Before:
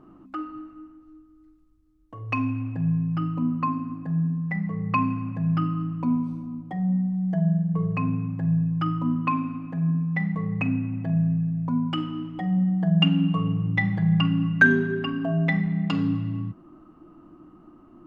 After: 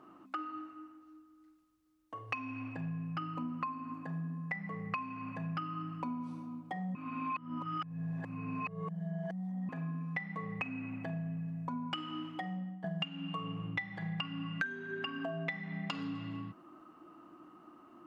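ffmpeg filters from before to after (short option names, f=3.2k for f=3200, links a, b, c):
-filter_complex "[0:a]asplit=4[a][b][c][d];[a]atrim=end=6.952[e];[b]atrim=start=6.948:end=9.692,asetpts=PTS-STARTPTS,areverse[f];[c]atrim=start=9.688:end=12.84,asetpts=PTS-STARTPTS,afade=t=out:st=2.612:d=0.54:silence=0.177828[g];[d]atrim=start=12.84,asetpts=PTS-STARTPTS,afade=t=in:d=0.004:c=hsin:silence=0.177828[h];[e][f]acrossfade=d=0.004:c1=hsin:c2=hsin[i];[g][h]concat=n=2:v=0:a=1[j];[i][j]acrossfade=d=0.004:c1=hsin:c2=hsin,highpass=f=1k:p=1,acompressor=threshold=-38dB:ratio=8,volume=3dB"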